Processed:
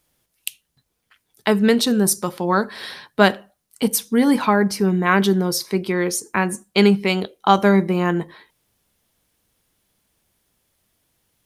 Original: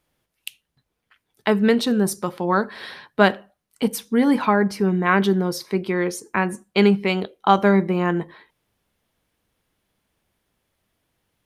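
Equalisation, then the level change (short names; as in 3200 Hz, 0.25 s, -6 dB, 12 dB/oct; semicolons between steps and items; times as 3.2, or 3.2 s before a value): tone controls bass +1 dB, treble +9 dB; +1.0 dB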